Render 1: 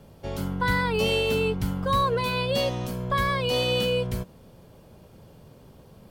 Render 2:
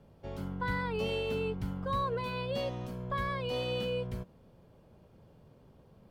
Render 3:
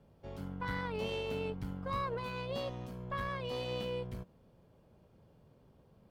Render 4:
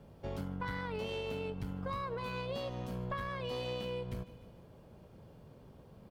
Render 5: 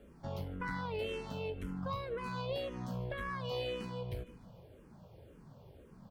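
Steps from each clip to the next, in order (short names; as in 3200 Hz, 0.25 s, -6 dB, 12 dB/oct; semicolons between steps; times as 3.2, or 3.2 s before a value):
high shelf 4200 Hz -11.5 dB; gain -8.5 dB
tube stage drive 24 dB, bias 0.75
feedback echo 0.15 s, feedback 54%, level -21.5 dB; compressor, threshold -43 dBFS, peak gain reduction 11.5 dB; gain +7.5 dB
endless phaser -1.9 Hz; gain +2.5 dB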